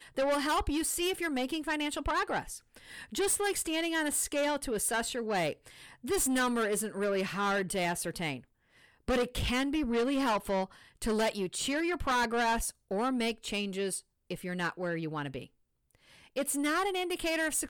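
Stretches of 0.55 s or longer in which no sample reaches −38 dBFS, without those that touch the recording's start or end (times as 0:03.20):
0:08.37–0:09.08
0:15.44–0:16.36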